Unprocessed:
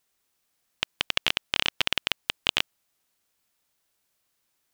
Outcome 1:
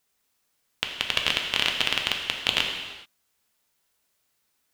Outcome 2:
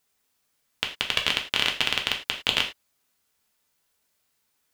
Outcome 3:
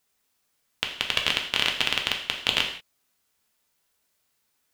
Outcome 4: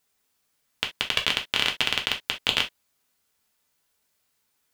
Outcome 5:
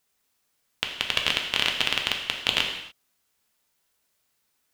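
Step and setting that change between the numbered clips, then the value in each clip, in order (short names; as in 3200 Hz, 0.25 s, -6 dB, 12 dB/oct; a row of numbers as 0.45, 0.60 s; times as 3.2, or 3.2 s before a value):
non-linear reverb, gate: 460, 130, 210, 90, 320 ms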